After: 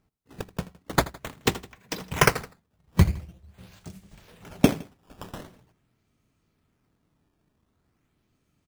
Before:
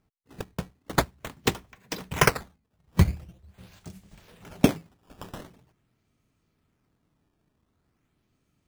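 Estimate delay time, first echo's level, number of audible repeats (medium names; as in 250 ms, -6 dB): 81 ms, -18.5 dB, 2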